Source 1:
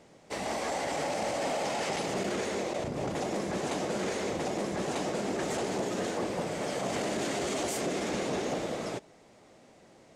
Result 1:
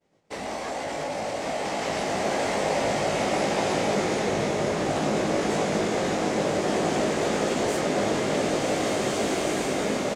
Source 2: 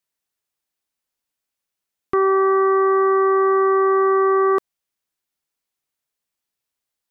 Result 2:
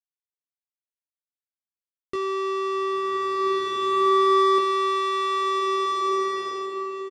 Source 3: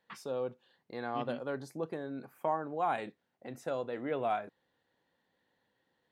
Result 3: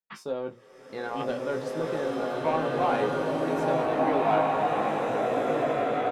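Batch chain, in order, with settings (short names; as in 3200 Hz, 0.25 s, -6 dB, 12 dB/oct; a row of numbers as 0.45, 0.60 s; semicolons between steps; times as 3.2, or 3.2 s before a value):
de-hum 119.2 Hz, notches 11; expander -47 dBFS; high shelf 7900 Hz -6 dB; compressor 2:1, threshold -22 dBFS; soft clip -25.5 dBFS; doubler 19 ms -6 dB; bloom reverb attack 1.9 s, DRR -5.5 dB; normalise peaks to -12 dBFS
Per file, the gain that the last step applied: +1.5, +0.5, +5.5 dB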